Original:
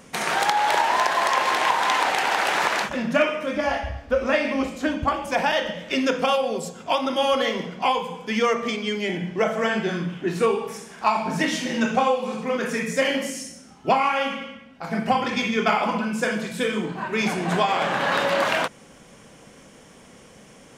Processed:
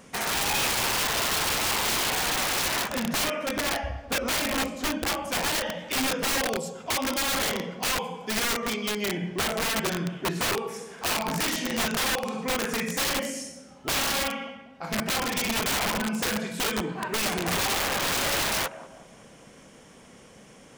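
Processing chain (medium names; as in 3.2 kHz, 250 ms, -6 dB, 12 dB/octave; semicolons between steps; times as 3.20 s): band-passed feedback delay 191 ms, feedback 48%, band-pass 530 Hz, level -16 dB; integer overflow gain 18.5 dB; trim -2.5 dB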